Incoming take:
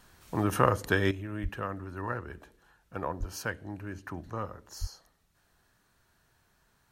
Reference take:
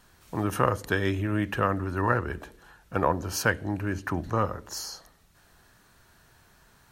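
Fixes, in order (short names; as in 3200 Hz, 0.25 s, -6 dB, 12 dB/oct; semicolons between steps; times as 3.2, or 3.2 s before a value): 1.11 gain correction +10 dB; 1.42–1.54 HPF 140 Hz 24 dB/oct; 3.19–3.31 HPF 140 Hz 24 dB/oct; 4.8–4.92 HPF 140 Hz 24 dB/oct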